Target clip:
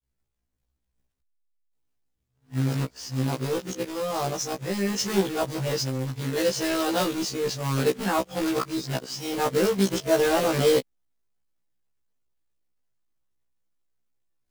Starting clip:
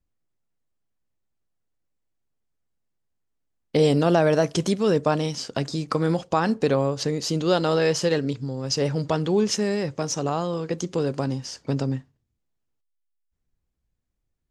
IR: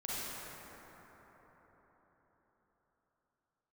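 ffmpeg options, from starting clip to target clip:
-af "areverse,acrusher=bits=2:mode=log:mix=0:aa=0.000001,afftfilt=real='re*1.73*eq(mod(b,3),0)':imag='im*1.73*eq(mod(b,3),0)':win_size=2048:overlap=0.75"

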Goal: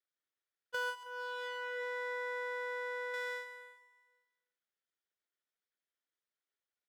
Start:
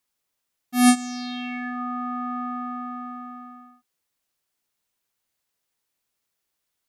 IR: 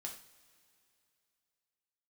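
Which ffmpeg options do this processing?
-filter_complex "[0:a]asplit=3[link_01][link_02][link_03];[link_01]bandpass=frequency=730:width_type=q:width=8,volume=0dB[link_04];[link_02]bandpass=frequency=1090:width_type=q:width=8,volume=-6dB[link_05];[link_03]bandpass=frequency=2440:width_type=q:width=8,volume=-9dB[link_06];[link_04][link_05][link_06]amix=inputs=3:normalize=0,aeval=exprs='abs(val(0))':channel_layout=same,asettb=1/sr,asplit=3[link_07][link_08][link_09];[link_07]atrim=end=1.034[link_10];[link_08]atrim=start=1.03:end=3.14,asetpts=PTS-STARTPTS,afade=type=in:duration=0.004:curve=qsin,afade=type=out:start_time=2.106:duration=0.004:curve=qsin,highshelf=frequency=2000:gain=-11[link_11];[link_09]atrim=start=3.136[link_12];[link_10][link_11]acrossfade=duration=0.004:curve1=hsin:curve2=qsin[link_13];[link_13][link_12]acrossfade=duration=0.004:curve1=qsin:curve2=hsin,agate=range=-9dB:threshold=-47dB:ratio=16:detection=peak,adynamicequalizer=threshold=0.00126:dfrequency=1000:dqfactor=4.6:tfrequency=1000:tqfactor=4.6:attack=5:release=100:ratio=0.375:range=3:mode=boostabove:tftype=bell,acompressor=threshold=-44dB:ratio=12,highpass=350,aecho=1:1:159|318|477|636|795:0.168|0.0907|0.049|0.0264|0.0143,volume=14.5dB"

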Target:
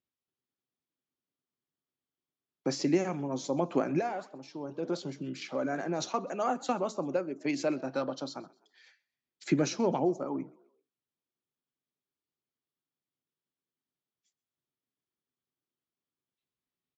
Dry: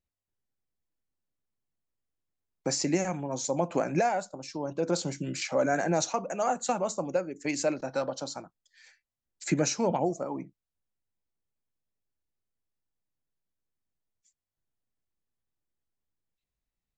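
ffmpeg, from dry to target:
ffmpeg -i in.wav -filter_complex "[0:a]asplit=3[link_01][link_02][link_03];[link_01]afade=type=out:start_time=3.97:duration=0.02[link_04];[link_02]flanger=delay=1.3:depth=8.6:regen=90:speed=1.6:shape=sinusoidal,afade=type=in:start_time=3.97:duration=0.02,afade=type=out:start_time=5.99:duration=0.02[link_05];[link_03]afade=type=in:start_time=5.99:duration=0.02[link_06];[link_04][link_05][link_06]amix=inputs=3:normalize=0,highpass=130,equalizer=frequency=140:width_type=q:width=4:gain=5,equalizer=frequency=260:width_type=q:width=4:gain=7,equalizer=frequency=380:width_type=q:width=4:gain=7,equalizer=frequency=1200:width_type=q:width=4:gain=5,equalizer=frequency=3300:width_type=q:width=4:gain=6,lowpass=frequency=5700:width=0.5412,lowpass=frequency=5700:width=1.3066,asplit=4[link_07][link_08][link_09][link_10];[link_08]adelay=129,afreqshift=42,volume=-23.5dB[link_11];[link_09]adelay=258,afreqshift=84,volume=-31.7dB[link_12];[link_10]adelay=387,afreqshift=126,volume=-39.9dB[link_13];[link_07][link_11][link_12][link_13]amix=inputs=4:normalize=0,volume=-4dB" out.wav

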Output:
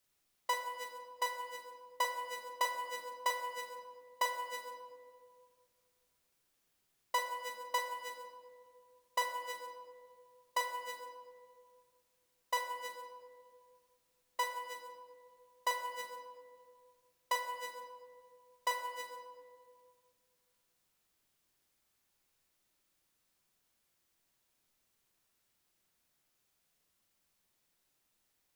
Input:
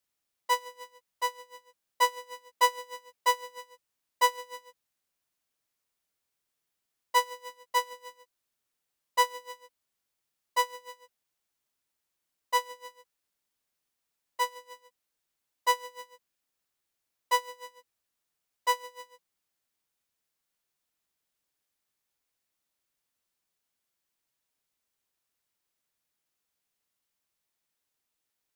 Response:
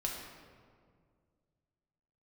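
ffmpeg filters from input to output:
-filter_complex "[0:a]acompressor=threshold=-37dB:ratio=4,asplit=2[link_01][link_02];[1:a]atrim=start_sample=2205,lowshelf=frequency=490:gain=6.5,adelay=41[link_03];[link_02][link_03]afir=irnorm=-1:irlink=0,volume=-6.5dB[link_04];[link_01][link_04]amix=inputs=2:normalize=0,volume=3.5dB"

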